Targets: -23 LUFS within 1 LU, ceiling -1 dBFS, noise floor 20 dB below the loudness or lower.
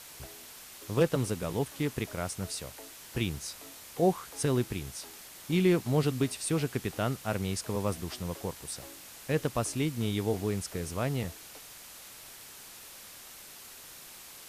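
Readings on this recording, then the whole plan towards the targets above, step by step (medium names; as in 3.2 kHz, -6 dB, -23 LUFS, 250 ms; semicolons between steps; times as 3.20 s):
noise floor -49 dBFS; noise floor target -52 dBFS; loudness -32.0 LUFS; peak level -13.5 dBFS; loudness target -23.0 LUFS
-> noise print and reduce 6 dB; trim +9 dB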